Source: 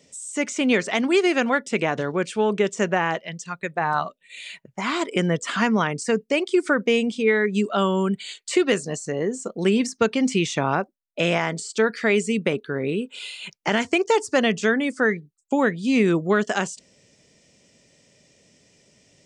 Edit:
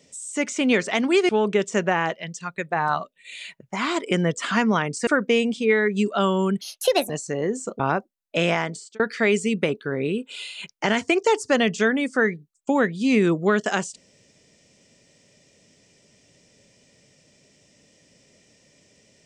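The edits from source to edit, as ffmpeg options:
-filter_complex "[0:a]asplit=7[s0][s1][s2][s3][s4][s5][s6];[s0]atrim=end=1.292[s7];[s1]atrim=start=2.338:end=6.122[s8];[s2]atrim=start=6.648:end=8.194[s9];[s3]atrim=start=8.19:end=8.88,asetpts=PTS-STARTPTS,asetrate=62622,aresample=44100[s10];[s4]atrim=start=8.876:end=9.582[s11];[s5]atrim=start=10.628:end=11.83,asetpts=PTS-STARTPTS,afade=t=out:st=0.792:d=0.41[s12];[s6]atrim=start=11.83,asetpts=PTS-STARTPTS,afade=t=in:d=0.004:c=hsin[s13];[s7][s8]acrossfade=d=0.004:c1=hsin:c2=hsin[s14];[s14][s9]acrossfade=d=0.004:c1=hsin:c2=hsin[s15];[s15][s10]acrossfade=d=0.004:c1=hsin:c2=hsin[s16];[s16][s11]acrossfade=d=0.004:c1=hsin:c2=hsin[s17];[s12][s13]concat=n=2:v=0:a=1[s18];[s17][s18]acrossfade=d=0.004:c1=hsin:c2=hsin"

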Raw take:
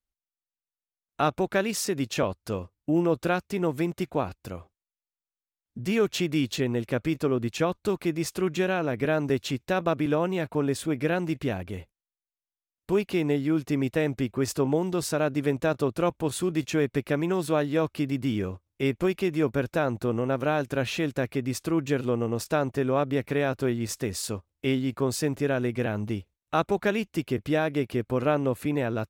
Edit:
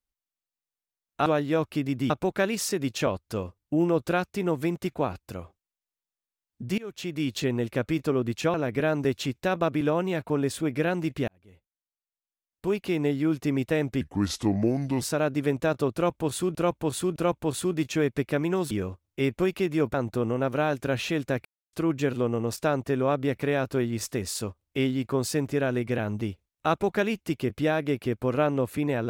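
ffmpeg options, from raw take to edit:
-filter_complex "[0:a]asplit=14[s0][s1][s2][s3][s4][s5][s6][s7][s8][s9][s10][s11][s12][s13];[s0]atrim=end=1.262[s14];[s1]atrim=start=17.488:end=18.332[s15];[s2]atrim=start=1.258:end=5.94,asetpts=PTS-STARTPTS,afade=t=out:st=4.678:d=0.004:c=hsin:silence=0.0668344[s16];[s3]atrim=start=5.94:end=7.702,asetpts=PTS-STARTPTS,afade=t=in:d=0.65:silence=0.0668344[s17];[s4]atrim=start=8.788:end=11.53,asetpts=PTS-STARTPTS,afade=t=out:st=2.738:d=0.004:c=hsin[s18];[s5]atrim=start=11.53:end=14.264,asetpts=PTS-STARTPTS,afade=t=in:d=1.87[s19];[s6]atrim=start=14.26:end=15.01,asetpts=PTS-STARTPTS,asetrate=33075,aresample=44100[s20];[s7]atrim=start=15.006:end=16.552[s21];[s8]atrim=start=15.938:end=16.552[s22];[s9]atrim=start=15.938:end=17.492[s23];[s10]atrim=start=18.328:end=19.562[s24];[s11]atrim=start=19.818:end=21.33,asetpts=PTS-STARTPTS,afade=t=out:st=1.508:d=0.004:c=hsin[s25];[s12]atrim=start=21.33:end=21.61,asetpts=PTS-STARTPTS,volume=0[s26];[s13]atrim=start=21.61,asetpts=PTS-STARTPTS,afade=t=in:d=0.004:c=hsin[s27];[s14][s15]acrossfade=d=0.004:c1=hsin:c2=hsin[s28];[s16][s17]concat=n=2:v=0:a=1[s29];[s28][s29]acrossfade=d=0.004:c1=hsin:c2=hsin[s30];[s18][s19]concat=n=2:v=0:a=1[s31];[s30][s31]acrossfade=d=0.004:c1=hsin:c2=hsin[s32];[s32][s20]acrossfade=d=0.004:c1=hsin:c2=hsin[s33];[s33][s21]acrossfade=d=0.004:c1=hsin:c2=hsin[s34];[s34][s22]acrossfade=d=0.004:c1=hsin:c2=hsin[s35];[s35][s23]acrossfade=d=0.004:c1=hsin:c2=hsin[s36];[s36][s24]acrossfade=d=0.004:c1=hsin:c2=hsin[s37];[s25][s26][s27]concat=n=3:v=0:a=1[s38];[s37][s38]acrossfade=d=0.004:c1=hsin:c2=hsin"

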